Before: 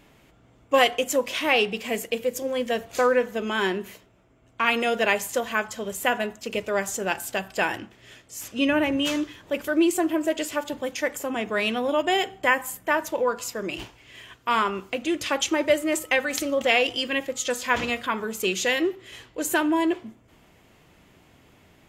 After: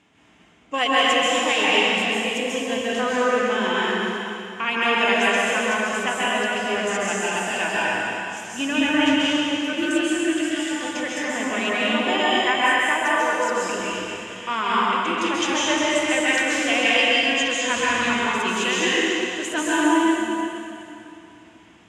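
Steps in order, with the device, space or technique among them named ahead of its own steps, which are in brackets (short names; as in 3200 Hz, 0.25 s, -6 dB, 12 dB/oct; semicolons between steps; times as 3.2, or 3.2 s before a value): 9.75–10.6 band shelf 690 Hz -13 dB; car door speaker (speaker cabinet 110–8500 Hz, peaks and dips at 130 Hz -8 dB, 370 Hz -4 dB, 550 Hz -8 dB, 3000 Hz +3 dB, 4400 Hz -6 dB); echo with dull and thin repeats by turns 0.122 s, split 1900 Hz, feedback 69%, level -7 dB; plate-style reverb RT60 2.5 s, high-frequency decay 0.9×, pre-delay 0.12 s, DRR -7 dB; gain -3 dB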